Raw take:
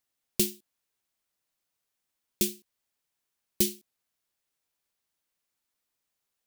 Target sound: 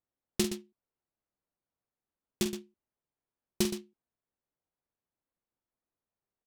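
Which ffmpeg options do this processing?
-af "adynamicsmooth=sensitivity=7:basefreq=1.1k,aecho=1:1:46.65|119.5:0.355|0.282"

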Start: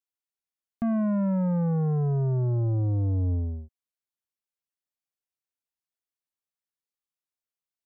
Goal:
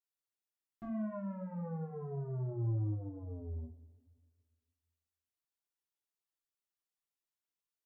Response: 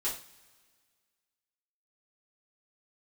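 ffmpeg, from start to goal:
-filter_complex "[0:a]alimiter=level_in=7dB:limit=-24dB:level=0:latency=1,volume=-7dB[a];[1:a]atrim=start_sample=2205[b];[a][b]afir=irnorm=-1:irlink=0,volume=-7.5dB"

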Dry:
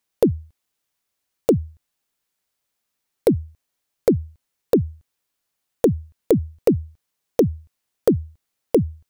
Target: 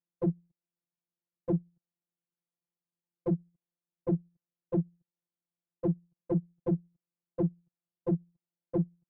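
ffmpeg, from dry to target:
-af "afftfilt=real='hypot(re,im)*cos(PI*b)':imag='0':win_size=1024:overlap=0.75,aeval=exprs='clip(val(0),-1,0.0422)':c=same,bandpass=f=190:t=q:w=1.3:csg=0"

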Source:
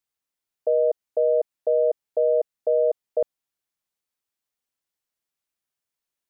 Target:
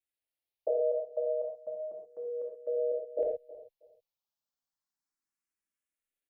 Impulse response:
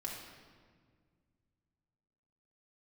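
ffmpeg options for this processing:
-filter_complex "[0:a]asettb=1/sr,asplit=3[a][b][c];[a]atrim=end=0.684[d];[b]atrim=start=0.68:end=3.19,asetpts=PTS-STARTPTS,afade=t=in:d=0.004:c=qsin,afade=t=out:st=2.506:d=0.004:c=qsin,acrossover=split=480[e][f];[e]aeval=exprs='val(0)*(1-0.5/2+0.5/2*cos(2*PI*7.2*n/s))':c=same[g];[f]aeval=exprs='val(0)*(1-0.5/2-0.5/2*cos(2*PI*7.2*n/s))':c=same[h];[g][h]amix=inputs=2:normalize=0[i];[c]atrim=start=3.186[j];[d][i]acrossfade=d=0.004:c1=hsin:c2=qsin[k];[k][j]acrossfade=d=0.004:c1=qsin:c2=hsin,asplit=2[l][m];[m]adelay=319,lowpass=f=820:p=1,volume=-17dB,asplit=2[n][o];[o]adelay=319,lowpass=f=820:p=1,volume=0.26[p];[l][n][p]amix=inputs=3:normalize=0[q];[1:a]atrim=start_sample=2205,atrim=end_sample=6174[r];[q][r]afir=irnorm=-1:irlink=0,asplit=2[s][t];[t]afreqshift=0.32[u];[s][u]amix=inputs=2:normalize=1,volume=-3dB"

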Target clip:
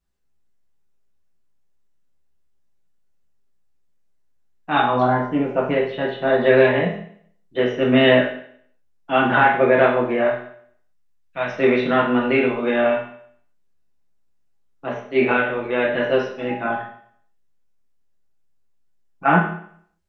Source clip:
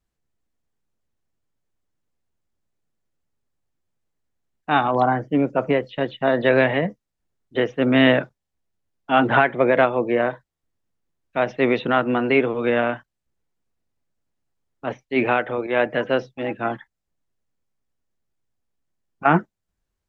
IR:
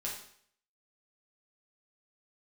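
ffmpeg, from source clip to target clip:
-filter_complex "[0:a]asettb=1/sr,asplit=3[a][b][c];[a]atrim=end=10.274[d];[b]atrim=start=10.27:end=11.48,asetpts=PTS-STARTPTS,afade=t=in:d=0.004:c=qsin,afade=t=out:st=1.206:d=0.004:c=qsin,equalizer=f=370:w=0.8:g=-11.5[e];[c]atrim=start=11.476[f];[d][e]acrossfade=d=0.004:c1=hsin:c2=qsin[g];[g][f]acrossfade=d=0.004:c1=qsin:c2=hsin[h];[1:a]atrim=start_sample=2205[i];[h][i]afir=irnorm=-1:irlink=0"

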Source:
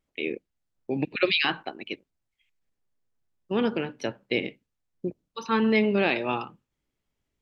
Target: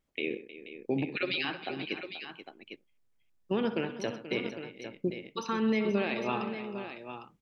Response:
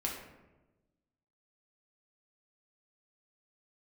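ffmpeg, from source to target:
-af "alimiter=limit=-20dB:level=0:latency=1:release=378,aecho=1:1:64|127|313|482|804:0.178|0.15|0.178|0.224|0.316"

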